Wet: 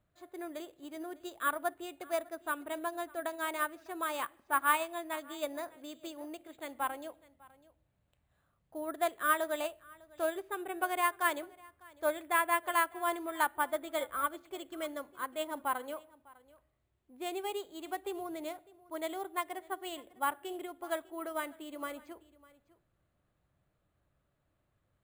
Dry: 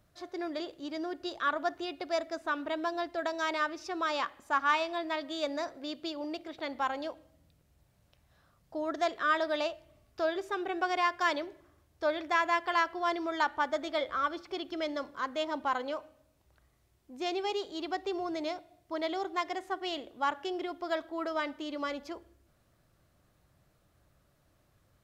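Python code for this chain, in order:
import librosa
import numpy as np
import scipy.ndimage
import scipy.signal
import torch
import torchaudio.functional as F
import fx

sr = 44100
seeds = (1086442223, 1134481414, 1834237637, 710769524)

p1 = scipy.signal.sosfilt(scipy.signal.butter(4, 4000.0, 'lowpass', fs=sr, output='sos'), x)
p2 = p1 + fx.echo_single(p1, sr, ms=602, db=-18.0, dry=0)
p3 = np.repeat(scipy.signal.resample_poly(p2, 1, 4), 4)[:len(p2)]
y = fx.upward_expand(p3, sr, threshold_db=-41.0, expansion=1.5)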